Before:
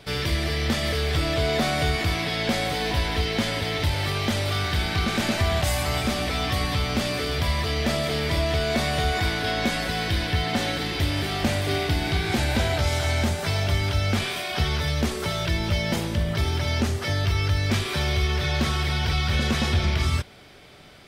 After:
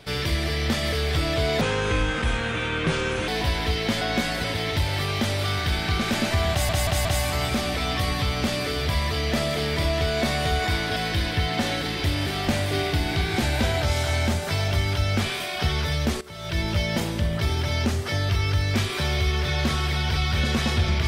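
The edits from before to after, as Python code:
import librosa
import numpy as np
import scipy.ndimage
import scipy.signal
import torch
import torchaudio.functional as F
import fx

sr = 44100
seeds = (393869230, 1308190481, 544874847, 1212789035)

y = fx.edit(x, sr, fx.speed_span(start_s=1.61, length_s=1.17, speed=0.7),
    fx.stutter(start_s=5.58, slice_s=0.18, count=4),
    fx.move(start_s=9.49, length_s=0.43, to_s=3.51),
    fx.fade_in_from(start_s=15.17, length_s=0.38, curve='qua', floor_db=-16.0), tone=tone)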